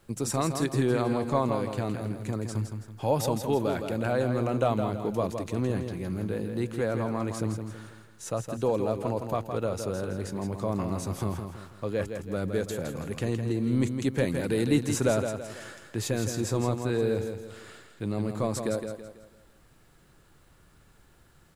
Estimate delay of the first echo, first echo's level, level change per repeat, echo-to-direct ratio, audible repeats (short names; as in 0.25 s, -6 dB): 0.164 s, -7.0 dB, -8.0 dB, -6.5 dB, 4